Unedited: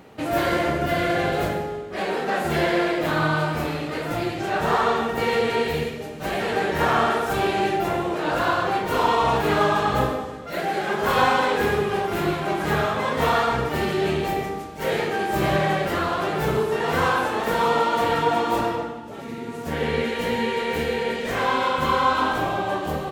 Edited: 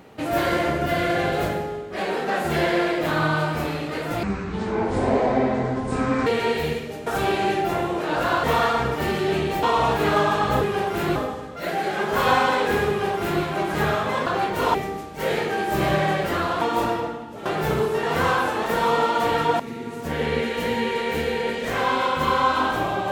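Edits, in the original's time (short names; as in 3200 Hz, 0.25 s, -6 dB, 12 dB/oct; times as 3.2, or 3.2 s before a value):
4.23–5.37 speed 56%
6.17–7.22 cut
8.59–9.07 swap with 13.17–14.36
11.79–12.33 copy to 10.06
18.37–19.21 move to 16.23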